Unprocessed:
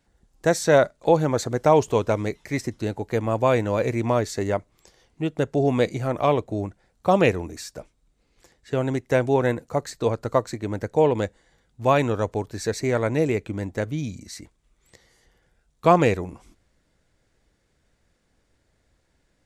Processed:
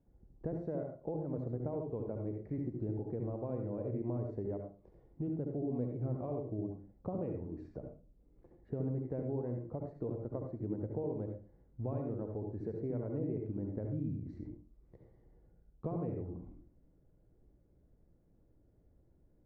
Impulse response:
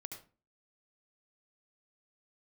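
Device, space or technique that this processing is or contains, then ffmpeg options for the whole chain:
television next door: -filter_complex "[0:a]acompressor=threshold=0.0158:ratio=4,lowpass=460[s0];[1:a]atrim=start_sample=2205[s1];[s0][s1]afir=irnorm=-1:irlink=0,volume=1.68"

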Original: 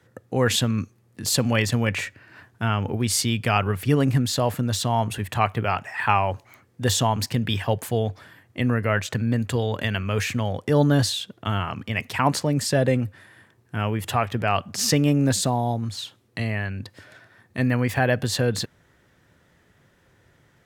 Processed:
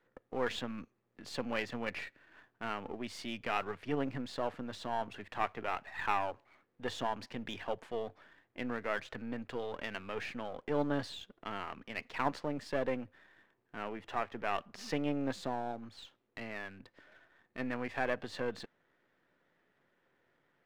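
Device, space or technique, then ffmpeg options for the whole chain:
crystal radio: -filter_complex "[0:a]asettb=1/sr,asplit=3[s0][s1][s2];[s0]atrim=end=13.754[s3];[s1]atrim=start=13.75:end=14.36,asetpts=PTS-STARTPTS,afade=t=in:d=0.004:c=qsin,afade=t=out:st=0.606:d=0.004:c=qsin,highshelf=f=3700:g=-5.5[s4];[s2]atrim=start=14.356[s5];[s3][s4]acrossfade=d=0.004:c1=hsin:c2=qsin[s6];[s6][s5]acrossfade=d=0.004:c1=qsin:c2=hsin,highpass=260,lowpass=2800,aeval=exprs='if(lt(val(0),0),0.447*val(0),val(0))':c=same,volume=0.355"

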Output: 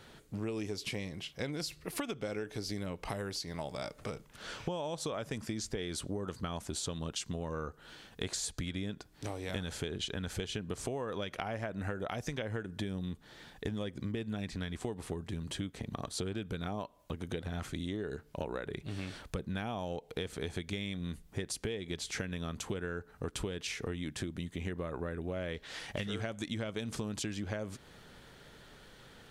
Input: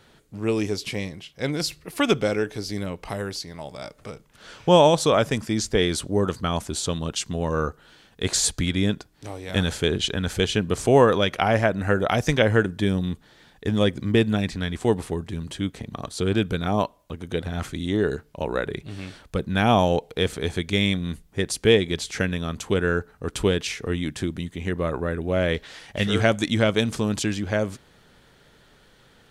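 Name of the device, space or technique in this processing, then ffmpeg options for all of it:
serial compression, leveller first: -af "acompressor=threshold=0.0794:ratio=3,acompressor=threshold=0.0178:ratio=6"

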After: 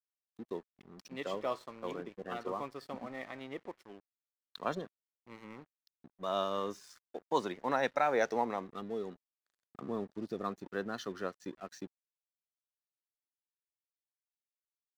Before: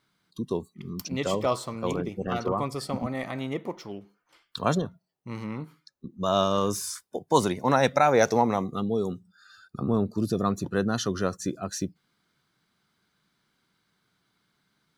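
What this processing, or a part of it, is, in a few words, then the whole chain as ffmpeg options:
pocket radio on a weak battery: -af "highpass=260,lowpass=4300,aeval=exprs='sgn(val(0))*max(abs(val(0))-0.00473,0)':c=same,equalizer=f=1800:t=o:w=0.3:g=4.5,volume=0.355"

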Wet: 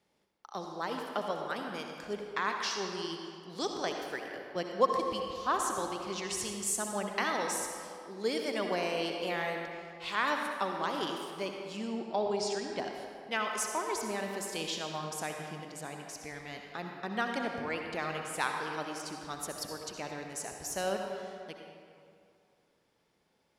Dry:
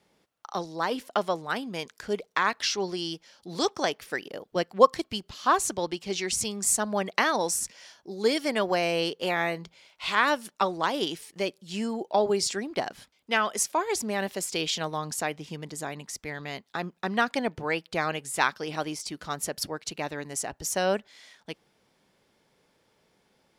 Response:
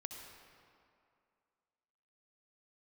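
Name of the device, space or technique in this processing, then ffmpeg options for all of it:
stairwell: -filter_complex "[0:a]asettb=1/sr,asplit=3[s0][s1][s2];[s0]atrim=end=11.774[s3];[s1]atrim=start=11.77:end=12.79,asetpts=PTS-STARTPTS,afade=t=in:d=0.004:c=qsin,afade=t=out:st=1.016:d=0.004:c=qsin,lowpass=6800[s4];[s2]atrim=start=12.786[s5];[s3][s4]acrossfade=d=0.004:c1=hsin:c2=qsin[s6];[s6][s5]acrossfade=d=0.004:c1=qsin:c2=hsin[s7];[1:a]atrim=start_sample=2205[s8];[s7][s8]afir=irnorm=-1:irlink=0,volume=0.668"

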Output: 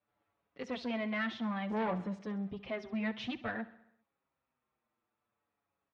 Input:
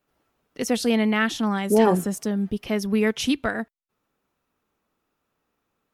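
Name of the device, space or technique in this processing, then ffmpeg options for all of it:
barber-pole flanger into a guitar amplifier: -filter_complex "[0:a]asplit=2[s0][s1];[s1]adelay=6.4,afreqshift=-0.57[s2];[s0][s2]amix=inputs=2:normalize=1,asoftclip=type=tanh:threshold=0.0708,highpass=80,equalizer=f=170:t=q:w=4:g=-7,equalizer=f=280:t=q:w=4:g=-7,equalizer=f=410:t=q:w=4:g=-7,equalizer=f=1500:t=q:w=4:g=-3,equalizer=f=2900:t=q:w=4:g=-5,lowpass=f=3400:w=0.5412,lowpass=f=3400:w=1.3066,aecho=1:1:66|132|198|264|330|396:0.141|0.0833|0.0492|0.029|0.0171|0.0101,volume=0.631"

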